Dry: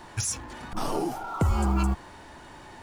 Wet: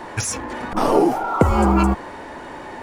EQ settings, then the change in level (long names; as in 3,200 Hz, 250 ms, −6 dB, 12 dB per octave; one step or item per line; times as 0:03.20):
octave-band graphic EQ 250/500/1,000/2,000 Hz +7/+11/+5/+7 dB
+3.5 dB